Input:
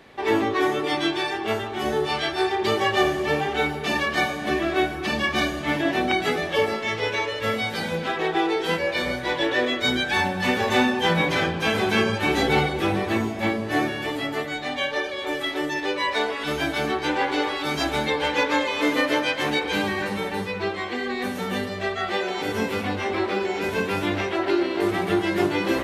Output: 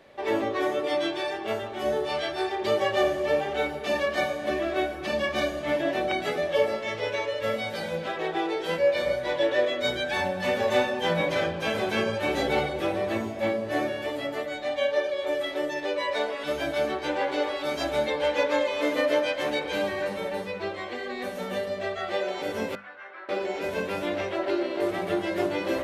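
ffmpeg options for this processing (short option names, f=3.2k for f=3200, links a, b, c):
-filter_complex "[0:a]asettb=1/sr,asplit=3[a][b][c];[a]atrim=end=22.754[d];[b]atrim=start=22.75:end=23.29,asetpts=PTS-STARTPTS,afade=t=in:d=0.004:c=qsin,afade=t=out:st=0.536:d=0.004:c=qsin,bandpass=f=1.5k:t=q:w=4[e];[c]atrim=start=23.286[f];[d][e]acrossfade=d=0.004:c1=hsin:c2=qsin[g];[g][f]acrossfade=d=0.004:c1=qsin:c2=hsin,equalizer=f=580:t=o:w=0.23:g=14,bandreject=f=50:t=h:w=6,bandreject=f=100:t=h:w=6,bandreject=f=150:t=h:w=6,bandreject=f=200:t=h:w=6,bandreject=f=250:t=h:w=6,volume=-6.5dB"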